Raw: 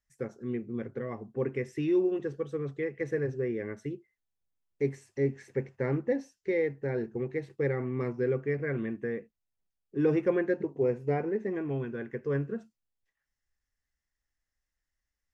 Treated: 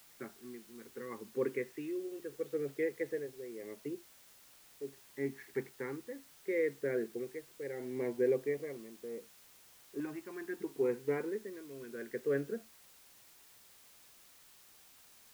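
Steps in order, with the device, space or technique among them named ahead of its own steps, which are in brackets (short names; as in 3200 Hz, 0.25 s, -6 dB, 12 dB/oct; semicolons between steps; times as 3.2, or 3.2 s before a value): shortwave radio (BPF 310–2700 Hz; tremolo 0.73 Hz, depth 79%; LFO notch saw up 0.2 Hz 460–2300 Hz; white noise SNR 21 dB); gain +1 dB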